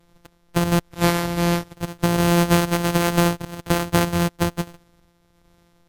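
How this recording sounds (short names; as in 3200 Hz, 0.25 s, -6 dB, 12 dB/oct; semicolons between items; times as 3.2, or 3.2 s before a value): a buzz of ramps at a fixed pitch in blocks of 256 samples; tremolo triangle 1.3 Hz, depth 40%; Vorbis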